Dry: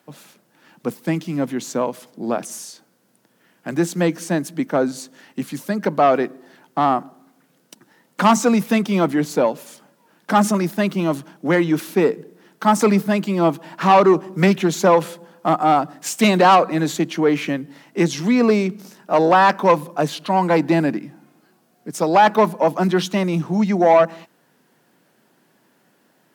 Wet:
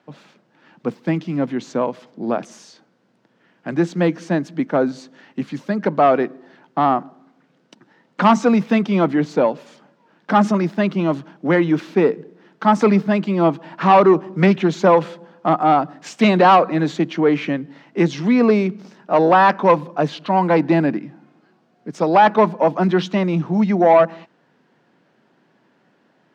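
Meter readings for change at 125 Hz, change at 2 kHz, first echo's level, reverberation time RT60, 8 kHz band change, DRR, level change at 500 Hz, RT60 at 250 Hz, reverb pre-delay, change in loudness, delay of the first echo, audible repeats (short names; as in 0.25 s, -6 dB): +1.5 dB, 0.0 dB, none, none, under -10 dB, none, +1.0 dB, none, none, +1.0 dB, none, none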